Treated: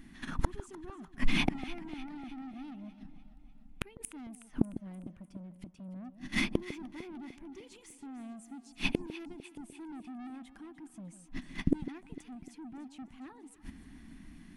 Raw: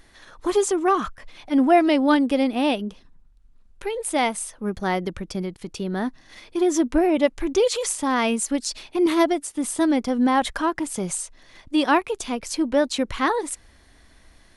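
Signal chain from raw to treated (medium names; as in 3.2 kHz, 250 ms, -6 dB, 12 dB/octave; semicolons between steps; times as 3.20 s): gate -44 dBFS, range -20 dB; FFT filter 120 Hz 0 dB, 170 Hz +13 dB, 260 Hz +14 dB, 520 Hz -17 dB, 740 Hz -7 dB, 1.6 kHz -5 dB, 2.7 kHz -1 dB, 4 kHz -10 dB, 7.4 kHz -7 dB, 13 kHz -4 dB; in parallel at -1.5 dB: compression 6:1, threshold -30 dBFS, peak gain reduction 24.5 dB; on the sum: saturation -17.5 dBFS, distortion -6 dB; inverted gate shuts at -26 dBFS, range -39 dB; on a send: echo whose repeats swap between lows and highs 150 ms, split 840 Hz, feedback 73%, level -12.5 dB; on the sum: trim +13.5 dB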